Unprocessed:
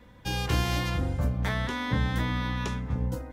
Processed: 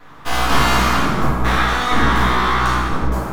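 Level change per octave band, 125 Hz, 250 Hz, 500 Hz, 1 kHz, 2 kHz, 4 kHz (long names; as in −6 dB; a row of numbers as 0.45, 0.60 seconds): +5.5, +10.0, +12.5, +18.5, +15.0, +12.5 decibels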